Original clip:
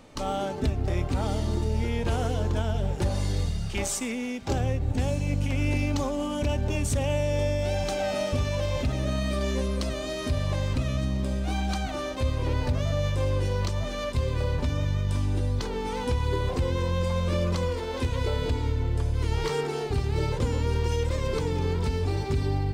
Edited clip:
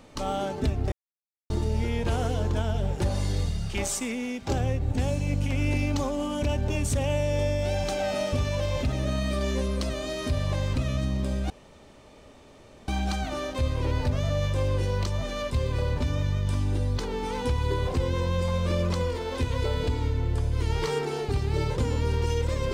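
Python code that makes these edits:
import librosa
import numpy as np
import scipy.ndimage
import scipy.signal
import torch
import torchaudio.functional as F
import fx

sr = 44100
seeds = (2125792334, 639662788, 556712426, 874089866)

y = fx.edit(x, sr, fx.silence(start_s=0.92, length_s=0.58),
    fx.insert_room_tone(at_s=11.5, length_s=1.38), tone=tone)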